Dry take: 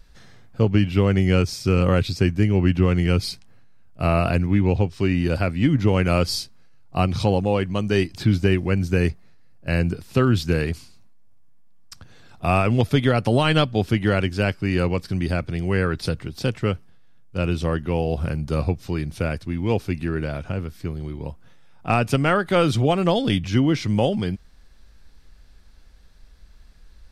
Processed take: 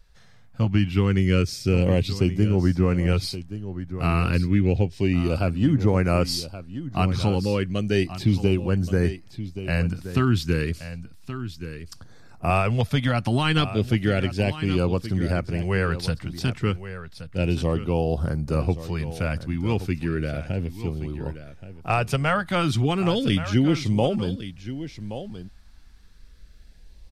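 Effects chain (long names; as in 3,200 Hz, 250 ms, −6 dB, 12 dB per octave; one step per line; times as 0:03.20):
auto-filter notch saw up 0.32 Hz 240–3,800 Hz
on a send: single-tap delay 1,125 ms −13 dB
on the sum: automatic gain control gain up to 5.5 dB
level −5.5 dB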